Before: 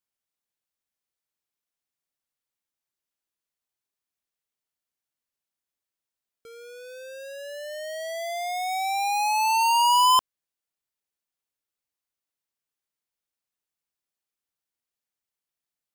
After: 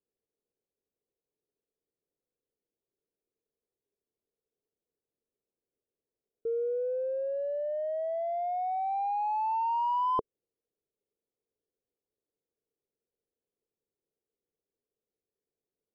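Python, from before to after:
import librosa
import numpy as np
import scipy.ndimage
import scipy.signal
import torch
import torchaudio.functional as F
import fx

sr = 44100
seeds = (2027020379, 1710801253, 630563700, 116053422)

y = fx.lowpass_res(x, sr, hz=440.0, q=4.9)
y = F.gain(torch.from_numpy(y), 3.0).numpy()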